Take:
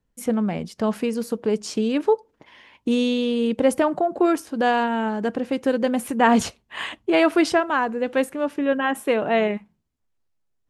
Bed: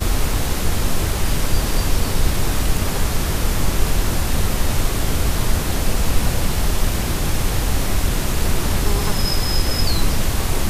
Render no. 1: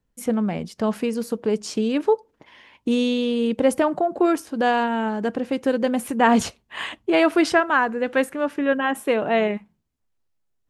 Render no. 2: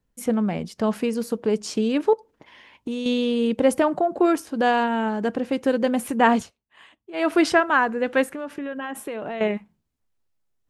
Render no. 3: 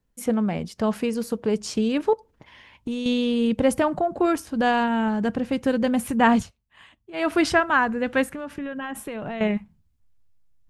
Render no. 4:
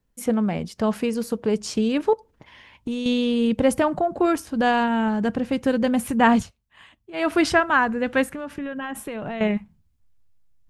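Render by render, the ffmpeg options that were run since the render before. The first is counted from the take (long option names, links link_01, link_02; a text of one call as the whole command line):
ffmpeg -i in.wav -filter_complex "[0:a]asettb=1/sr,asplit=3[link_01][link_02][link_03];[link_01]atrim=end=7.434[link_04];[link_02]atrim=start=7.43:end=8.74,asetpts=PTS-STARTPTS,afade=type=in:duration=0.004:curve=qsin,afade=type=out:start_time=1.306:duration=0.004:curve=qsin,equalizer=frequency=1600:width=1.4:gain=5[link_05];[link_03]atrim=start=8.736[link_06];[link_04][link_05]acrossfade=duration=0.004:curve1=hsin:curve2=qsin[link_07];[link_07][link_06]acrossfade=duration=0.004:curve1=qsin:curve2=hsin" out.wav
ffmpeg -i in.wav -filter_complex "[0:a]asettb=1/sr,asplit=3[link_01][link_02][link_03];[link_01]atrim=end=2.134[link_04];[link_02]atrim=start=2.13:end=3.06,asetpts=PTS-STARTPTS,afade=type=in:duration=0.004:curve=qsin,afade=type=out:start_time=0.926:duration=0.004:curve=qsin,acompressor=threshold=-26dB:ratio=4:attack=3.2:release=140:knee=1:detection=peak[link_05];[link_03]atrim=start=3.056[link_06];[link_04][link_05]acrossfade=duration=0.004:curve1=hsin:curve2=qsin[link_07];[link_07][link_06]acrossfade=duration=0.004:curve1=qsin:curve2=hsin,asettb=1/sr,asplit=3[link_08][link_09][link_10];[link_08]atrim=end=8.234[link_11];[link_09]atrim=start=8.23:end=9.41,asetpts=PTS-STARTPTS,afade=type=in:duration=0.004:curve=qsin,afade=type=out:start_time=1.176:duration=0.004:curve=qsin,acompressor=threshold=-27dB:ratio=10:attack=3.2:release=140:knee=1:detection=peak[link_12];[link_10]atrim=start=9.406[link_13];[link_11][link_12]acrossfade=duration=0.004:curve1=hsin:curve2=qsin[link_14];[link_14][link_13]acrossfade=duration=0.004:curve1=qsin:curve2=hsin,asplit=3[link_15][link_16][link_17];[link_15]atrim=end=6.47,asetpts=PTS-STARTPTS,afade=type=out:start_time=6.27:duration=0.2:silence=0.1[link_18];[link_16]atrim=start=6.47:end=7.13,asetpts=PTS-STARTPTS,volume=-20dB[link_19];[link_17]atrim=start=7.13,asetpts=PTS-STARTPTS,afade=type=in:duration=0.2:silence=0.1[link_20];[link_18][link_19][link_20]concat=n=3:v=0:a=1" out.wav
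ffmpeg -i in.wav -af "asubboost=boost=5.5:cutoff=150" out.wav
ffmpeg -i in.wav -af "volume=1dB" out.wav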